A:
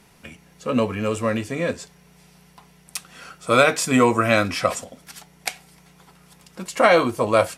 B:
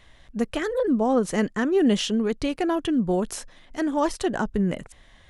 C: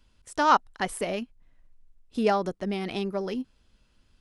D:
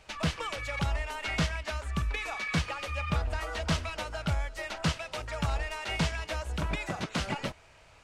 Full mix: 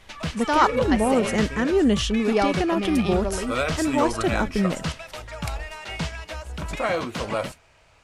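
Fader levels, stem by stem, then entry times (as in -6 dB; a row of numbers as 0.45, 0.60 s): -10.0, +0.5, +1.5, 0.0 dB; 0.00, 0.00, 0.10, 0.00 s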